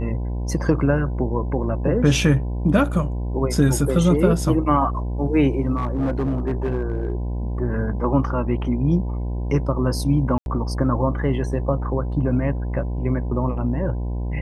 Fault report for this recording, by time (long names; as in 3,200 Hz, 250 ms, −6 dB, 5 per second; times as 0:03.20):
mains buzz 60 Hz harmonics 17 −25 dBFS
0:05.76–0:07.13: clipping −18 dBFS
0:10.38–0:10.46: drop-out 81 ms